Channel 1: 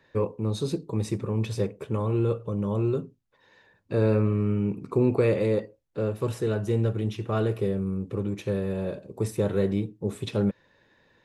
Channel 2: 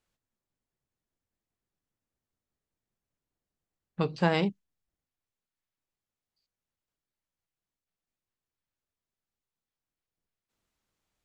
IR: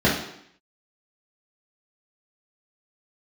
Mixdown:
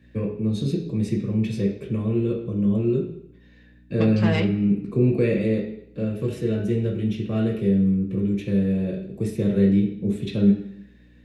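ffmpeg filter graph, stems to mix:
-filter_complex "[0:a]equalizer=f=1k:t=o:w=1.8:g=-11,aeval=exprs='val(0)+0.00158*(sin(2*PI*60*n/s)+sin(2*PI*2*60*n/s)/2+sin(2*PI*3*60*n/s)/3+sin(2*PI*4*60*n/s)/4+sin(2*PI*5*60*n/s)/5)':c=same,volume=-5.5dB,asplit=2[a][b];[b]volume=-14.5dB[c];[1:a]acontrast=56,asoftclip=type=tanh:threshold=-16.5dB,volume=-5.5dB,asplit=2[d][e];[e]volume=-24dB[f];[2:a]atrim=start_sample=2205[g];[c][f]amix=inputs=2:normalize=0[h];[h][g]afir=irnorm=-1:irlink=0[i];[a][d][i]amix=inputs=3:normalize=0,equalizer=f=2.4k:w=1.3:g=8"

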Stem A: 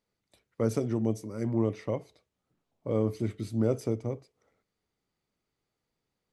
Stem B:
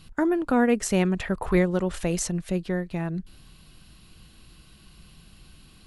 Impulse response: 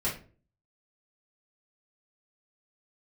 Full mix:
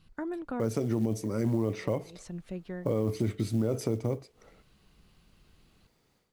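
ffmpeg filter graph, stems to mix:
-filter_complex "[0:a]dynaudnorm=f=560:g=3:m=13dB,alimiter=limit=-11dB:level=0:latency=1:release=25,acrusher=bits=8:mode=log:mix=0:aa=0.000001,volume=1dB,asplit=2[a][b];[1:a]lowpass=f=3.3k:p=1,volume=-11dB[c];[b]apad=whole_len=258778[d];[c][d]sidechaincompress=threshold=-38dB:ratio=8:attack=21:release=237[e];[a][e]amix=inputs=2:normalize=0,acompressor=threshold=-32dB:ratio=2"

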